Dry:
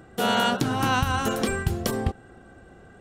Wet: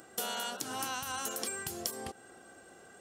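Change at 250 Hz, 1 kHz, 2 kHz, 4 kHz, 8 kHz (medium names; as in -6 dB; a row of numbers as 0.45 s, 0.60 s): -19.0 dB, -14.0 dB, -13.0 dB, -9.5 dB, -1.0 dB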